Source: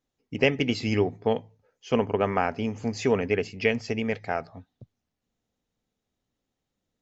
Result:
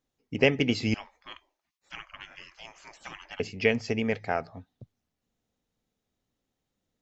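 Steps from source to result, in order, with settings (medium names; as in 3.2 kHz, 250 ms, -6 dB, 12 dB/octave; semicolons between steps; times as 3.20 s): 0.94–3.40 s: spectral gate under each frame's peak -25 dB weak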